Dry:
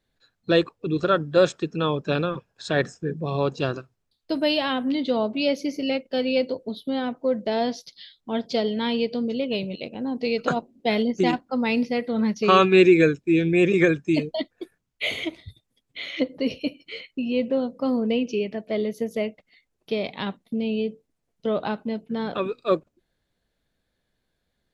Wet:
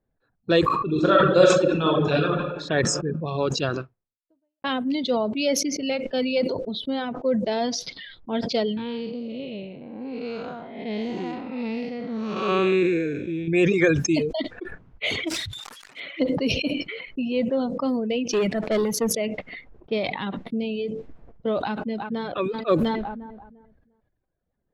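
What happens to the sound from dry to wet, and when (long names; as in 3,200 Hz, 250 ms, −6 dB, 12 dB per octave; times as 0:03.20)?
0:00.63–0:02.30: thrown reverb, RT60 1.5 s, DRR −2.5 dB
0:03.65–0:04.64: fade out exponential
0:08.77–0:13.48: spectrum smeared in time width 327 ms
0:15.27–0:16.00: spike at every zero crossing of −26.5 dBFS
0:18.29–0:19.13: leveller curve on the samples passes 2
0:21.59–0:22.25: delay throw 350 ms, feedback 50%, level −15.5 dB
whole clip: low-pass that shuts in the quiet parts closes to 1,000 Hz, open at −20 dBFS; reverb reduction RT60 1.1 s; level that may fall only so fast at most 41 dB per second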